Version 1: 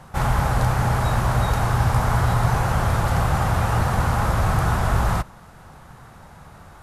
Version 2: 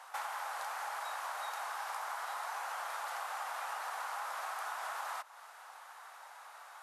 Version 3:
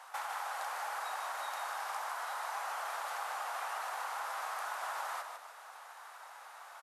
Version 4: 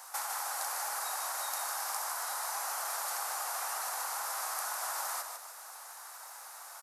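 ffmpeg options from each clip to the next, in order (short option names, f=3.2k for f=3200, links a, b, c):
-af "highpass=f=750:w=0.5412,highpass=f=750:w=1.3066,acompressor=threshold=-35dB:ratio=6,volume=-3dB"
-filter_complex "[0:a]asplit=5[a][b][c][d][e];[b]adelay=152,afreqshift=-40,volume=-6dB[f];[c]adelay=304,afreqshift=-80,volume=-15.4dB[g];[d]adelay=456,afreqshift=-120,volume=-24.7dB[h];[e]adelay=608,afreqshift=-160,volume=-34.1dB[i];[a][f][g][h][i]amix=inputs=5:normalize=0"
-af "aexciter=amount=5.1:drive=3.5:freq=4.5k"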